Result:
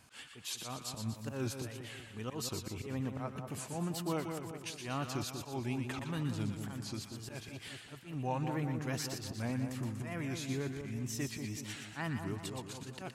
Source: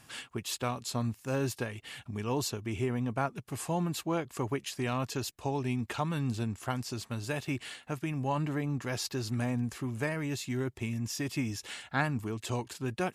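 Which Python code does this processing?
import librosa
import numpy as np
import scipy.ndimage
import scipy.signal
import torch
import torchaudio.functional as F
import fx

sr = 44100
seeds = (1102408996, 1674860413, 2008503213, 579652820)

y = fx.wow_flutter(x, sr, seeds[0], rate_hz=2.1, depth_cents=150.0)
y = fx.auto_swell(y, sr, attack_ms=136.0)
y = fx.echo_split(y, sr, split_hz=1200.0, low_ms=189, high_ms=120, feedback_pct=52, wet_db=-6)
y = F.gain(torch.from_numpy(y), -4.5).numpy()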